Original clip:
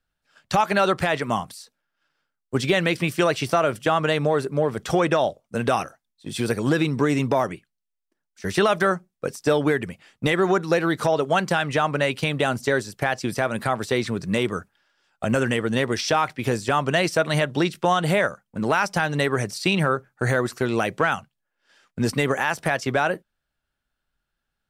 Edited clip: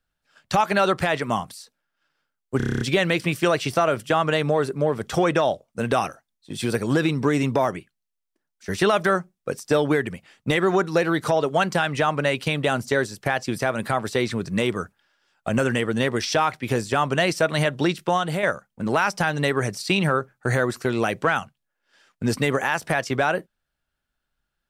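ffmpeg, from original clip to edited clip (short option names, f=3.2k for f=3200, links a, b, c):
-filter_complex "[0:a]asplit=10[a][b][c][d][e][f][g][h][i][j];[a]atrim=end=2.602[k];[b]atrim=start=2.568:end=2.602[l];[c]atrim=start=2.568:end=2.602[m];[d]atrim=start=2.568:end=2.602[n];[e]atrim=start=2.568:end=2.602[o];[f]atrim=start=2.568:end=2.602[p];[g]atrim=start=2.568:end=2.602[q];[h]atrim=start=2.568:end=2.602[r];[i]atrim=start=2.568:end=18.19,asetpts=PTS-STARTPTS,afade=t=out:st=15.202:d=0.42:silence=0.473151[s];[j]atrim=start=18.19,asetpts=PTS-STARTPTS,afade=t=in:d=0.004:c=hsin:silence=0.473151[t];[k][l]acrossfade=d=0.004:c1=hsin:c2=hsin[u];[u][m]acrossfade=d=0.004:c1=hsin:c2=hsin[v];[v][n]acrossfade=d=0.004:c1=hsin:c2=hsin[w];[w][o]acrossfade=d=0.004:c1=hsin:c2=hsin[x];[x][p]acrossfade=d=0.004:c1=hsin:c2=hsin[y];[y][q]acrossfade=d=0.004:c1=hsin:c2=hsin[z];[z][r]acrossfade=d=0.004:c1=hsin:c2=hsin[aa];[s][t]concat=n=2:v=0:a=1[ab];[aa][ab]acrossfade=d=0.004:c1=hsin:c2=hsin"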